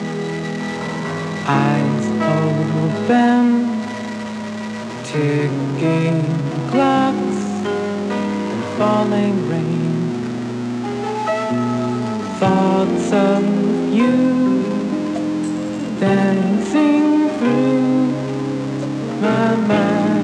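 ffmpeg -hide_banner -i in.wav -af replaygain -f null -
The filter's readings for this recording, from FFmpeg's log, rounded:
track_gain = -1.4 dB
track_peak = 0.529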